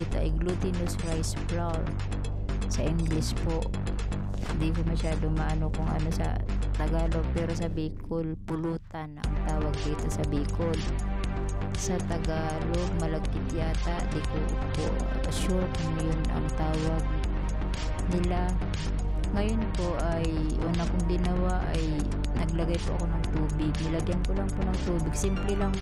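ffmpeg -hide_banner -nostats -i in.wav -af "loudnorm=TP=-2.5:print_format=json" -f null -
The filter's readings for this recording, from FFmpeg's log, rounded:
"input_i" : "-30.2",
"input_tp" : "-16.5",
"input_lra" : "1.8",
"input_thresh" : "-40.2",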